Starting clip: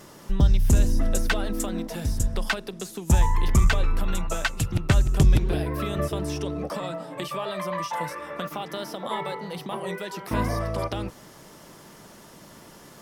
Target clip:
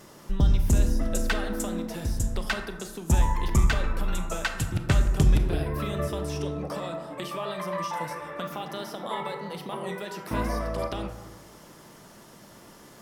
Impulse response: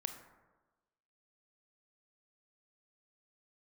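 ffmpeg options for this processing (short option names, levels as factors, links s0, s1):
-filter_complex "[1:a]atrim=start_sample=2205[s0];[0:a][s0]afir=irnorm=-1:irlink=0,volume=0.891"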